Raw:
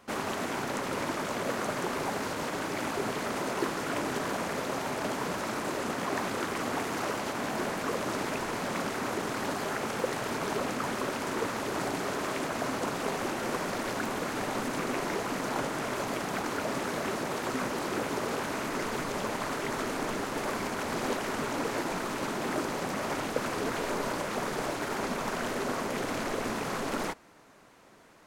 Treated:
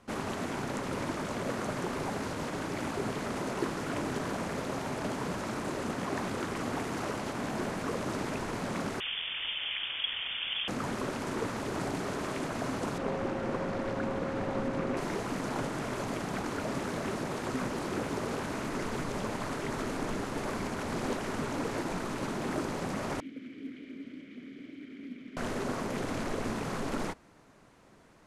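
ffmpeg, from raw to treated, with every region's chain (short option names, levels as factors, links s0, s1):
-filter_complex "[0:a]asettb=1/sr,asplit=3[s0][s1][s2];[s0]atrim=end=9.004[s3];[s1]atrim=start=9:end=10.68,asetpts=PTS-STARTPTS,afade=t=in:d=0.004:c=qsin,afade=t=out:st=1.676:d=0.004:c=qsin,highpass=350,equalizer=f=750:w=1.4:g=6,lowpass=f=3200:t=q:w=0.5098,lowpass=f=3200:t=q:w=0.6013,lowpass=f=3200:t=q:w=0.9,lowpass=f=3200:t=q:w=2.563,afreqshift=-3800[s4];[s2]atrim=start=10.676[s5];[s3][s4]acrossfade=d=0.004:c1=hsin:c2=qsin[s6];[s6][s5]acrossfade=d=0.004:c1=qsin:c2=hsin,asettb=1/sr,asplit=3[s7][s8][s9];[s7]atrim=end=12.984[s10];[s8]atrim=start=12.98:end=14.97,asetpts=PTS-STARTPTS,afade=t=in:d=0.004:c=qsin,afade=t=out:st=1.986:d=0.004:c=qsin,aemphasis=mode=reproduction:type=75fm,aeval=exprs='val(0)+0.02*sin(2*PI*540*n/s)':c=same[s11];[s9]atrim=start=14.966[s12];[s10][s11]acrossfade=d=0.004:c1=hsin:c2=qsin[s13];[s13][s12]acrossfade=d=0.004:c1=qsin:c2=hsin,asettb=1/sr,asplit=3[s14][s15][s16];[s14]atrim=end=23.204[s17];[s15]atrim=start=23.2:end=25.37,asetpts=PTS-STARTPTS,afade=t=in:d=0.004:c=qsin,afade=t=out:st=2.166:d=0.004:c=qsin,asplit=3[s18][s19][s20];[s18]bandpass=f=270:t=q:w=8,volume=1[s21];[s19]bandpass=f=2290:t=q:w=8,volume=0.501[s22];[s20]bandpass=f=3010:t=q:w=8,volume=0.355[s23];[s21][s22][s23]amix=inputs=3:normalize=0,highshelf=f=9000:g=-11,acrusher=bits=9:mode=log:mix=0:aa=0.000001[s24];[s16]atrim=start=25.366[s25];[s17][s24]acrossfade=d=0.004:c1=hsin:c2=qsin[s26];[s26][s25]acrossfade=d=0.004:c1=qsin:c2=hsin,lowpass=f=12000:w=0.5412,lowpass=f=12000:w=1.3066,lowshelf=f=230:g=10.5,volume=0.596"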